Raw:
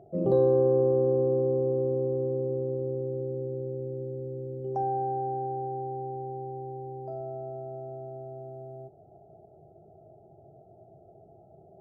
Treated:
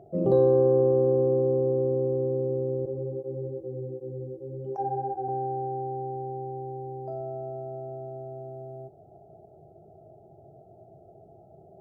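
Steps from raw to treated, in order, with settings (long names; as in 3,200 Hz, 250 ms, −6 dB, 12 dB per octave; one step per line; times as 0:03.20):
0:02.85–0:05.29: through-zero flanger with one copy inverted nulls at 1.3 Hz, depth 7.8 ms
level +2 dB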